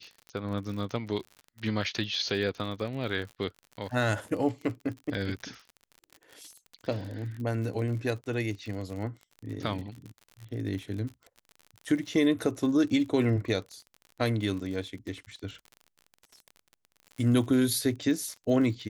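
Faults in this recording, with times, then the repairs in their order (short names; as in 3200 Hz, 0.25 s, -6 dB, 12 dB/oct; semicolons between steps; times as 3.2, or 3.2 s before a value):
crackle 50/s -37 dBFS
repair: de-click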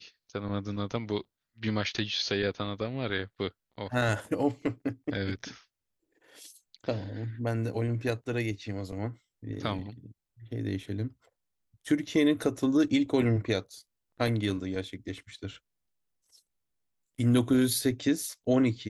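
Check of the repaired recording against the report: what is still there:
none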